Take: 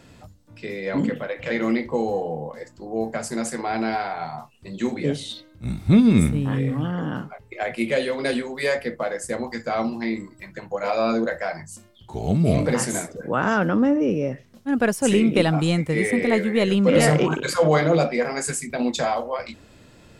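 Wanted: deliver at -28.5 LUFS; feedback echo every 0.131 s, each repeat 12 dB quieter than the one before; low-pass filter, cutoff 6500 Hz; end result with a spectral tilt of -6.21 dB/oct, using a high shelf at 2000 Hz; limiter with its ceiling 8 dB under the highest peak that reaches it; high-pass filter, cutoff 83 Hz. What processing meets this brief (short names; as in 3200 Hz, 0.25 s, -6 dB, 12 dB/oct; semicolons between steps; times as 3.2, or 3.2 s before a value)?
HPF 83 Hz; LPF 6500 Hz; high shelf 2000 Hz -4.5 dB; limiter -13.5 dBFS; feedback echo 0.131 s, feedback 25%, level -12 dB; gain -3.5 dB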